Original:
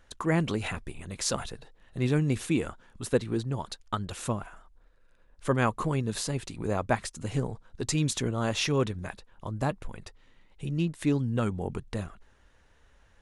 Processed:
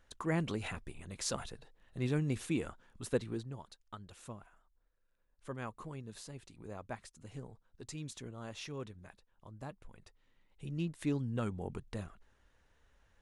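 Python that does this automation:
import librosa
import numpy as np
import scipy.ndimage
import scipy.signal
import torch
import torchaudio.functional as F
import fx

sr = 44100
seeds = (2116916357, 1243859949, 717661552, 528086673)

y = fx.gain(x, sr, db=fx.line((3.24, -7.5), (3.71, -17.0), (9.71, -17.0), (10.87, -8.0)))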